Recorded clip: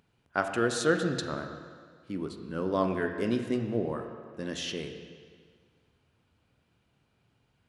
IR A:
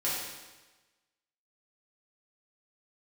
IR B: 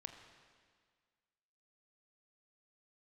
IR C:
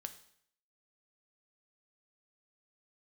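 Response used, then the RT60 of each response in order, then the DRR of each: B; 1.2, 1.8, 0.65 s; -9.0, 5.5, 8.0 dB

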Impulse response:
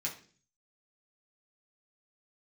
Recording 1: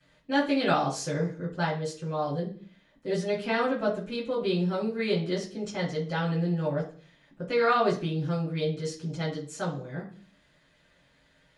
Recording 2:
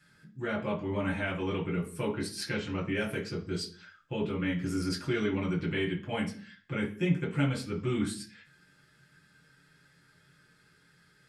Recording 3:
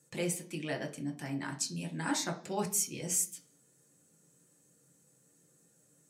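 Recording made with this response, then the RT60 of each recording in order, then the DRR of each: 2; 0.45, 0.45, 0.45 s; -13.0, -3.5, 3.0 dB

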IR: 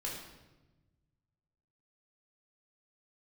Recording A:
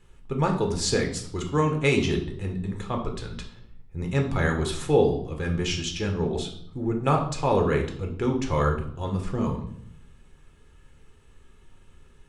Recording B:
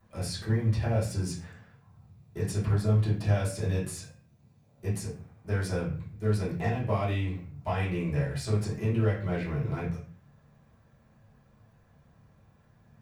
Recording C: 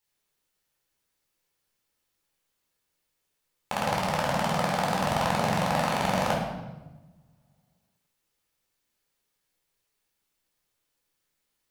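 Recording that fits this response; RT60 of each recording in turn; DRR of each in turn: C; 0.65, 0.40, 1.1 s; 2.0, -10.5, -3.5 dB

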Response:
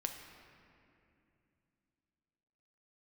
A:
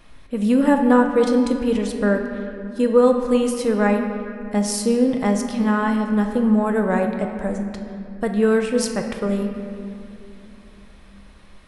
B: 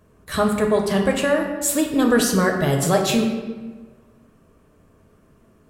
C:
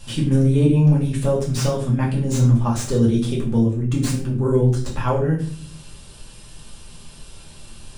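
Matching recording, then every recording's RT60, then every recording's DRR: A; 2.6, 1.4, 0.50 s; 3.5, 1.5, -5.0 dB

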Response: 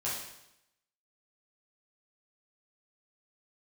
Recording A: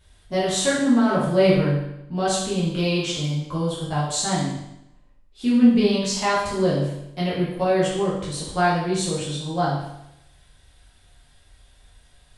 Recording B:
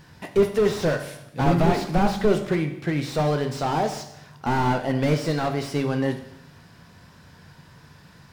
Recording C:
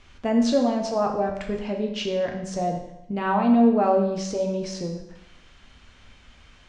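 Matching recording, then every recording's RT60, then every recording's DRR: A; 0.85, 0.85, 0.85 s; -8.0, 5.5, 1.0 dB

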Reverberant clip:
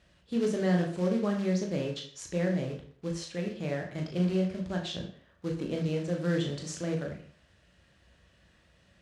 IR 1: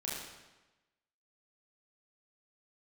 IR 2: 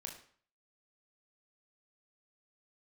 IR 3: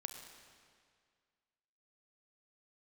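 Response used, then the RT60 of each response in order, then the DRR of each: 2; 1.1, 0.50, 2.0 s; -6.5, 1.0, 5.0 dB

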